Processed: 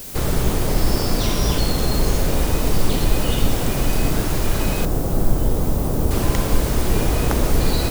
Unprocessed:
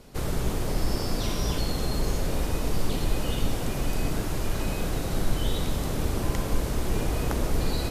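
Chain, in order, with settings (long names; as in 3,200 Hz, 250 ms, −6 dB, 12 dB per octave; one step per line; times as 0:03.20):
0:04.85–0:06.11: low-pass filter 1,000 Hz 12 dB per octave
background noise blue −43 dBFS
level +8 dB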